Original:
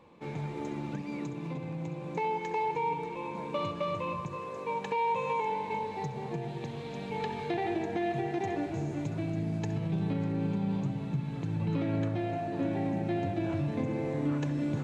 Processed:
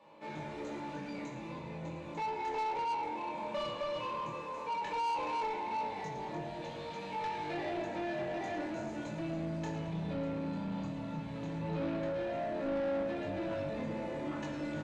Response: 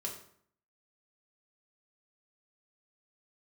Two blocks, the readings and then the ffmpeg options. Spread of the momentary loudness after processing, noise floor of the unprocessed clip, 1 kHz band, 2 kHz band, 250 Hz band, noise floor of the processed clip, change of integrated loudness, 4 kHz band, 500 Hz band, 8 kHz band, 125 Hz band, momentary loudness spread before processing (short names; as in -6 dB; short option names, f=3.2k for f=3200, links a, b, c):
8 LU, -40 dBFS, -2.5 dB, -2.0 dB, -6.0 dB, -44 dBFS, -4.5 dB, +0.5 dB, -2.5 dB, n/a, -10.0 dB, 7 LU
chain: -filter_complex "[0:a]asplit=6[a][b][c][d][e][f];[b]adelay=110,afreqshift=-80,volume=-10.5dB[g];[c]adelay=220,afreqshift=-160,volume=-17.4dB[h];[d]adelay=330,afreqshift=-240,volume=-24.4dB[i];[e]adelay=440,afreqshift=-320,volume=-31.3dB[j];[f]adelay=550,afreqshift=-400,volume=-38.2dB[k];[a][g][h][i][j][k]amix=inputs=6:normalize=0[l];[1:a]atrim=start_sample=2205,asetrate=66150,aresample=44100[m];[l][m]afir=irnorm=-1:irlink=0,flanger=delay=19.5:depth=6.8:speed=0.14,asplit=2[n][o];[o]highpass=f=720:p=1,volume=20dB,asoftclip=type=tanh:threshold=-23.5dB[p];[n][p]amix=inputs=2:normalize=0,lowpass=f=1.6k:p=1,volume=-6dB,acrossover=split=150|3400[q][r][s];[s]acontrast=86[t];[q][r][t]amix=inputs=3:normalize=0,volume=-3.5dB"